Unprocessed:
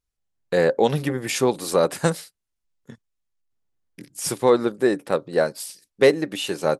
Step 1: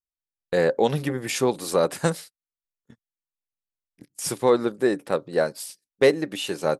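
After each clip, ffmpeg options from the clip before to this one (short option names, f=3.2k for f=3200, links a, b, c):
-af "agate=range=-18dB:threshold=-38dB:ratio=16:detection=peak,volume=-2dB"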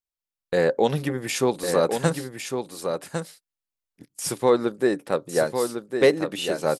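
-af "aecho=1:1:1104:0.473"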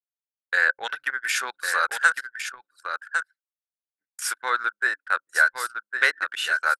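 -af "highpass=f=1.5k:t=q:w=8.7,anlmdn=15.8"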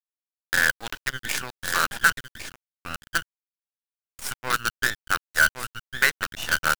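-af "aeval=exprs='sgn(val(0))*max(abs(val(0))-0.0075,0)':c=same,acrusher=bits=4:dc=4:mix=0:aa=0.000001"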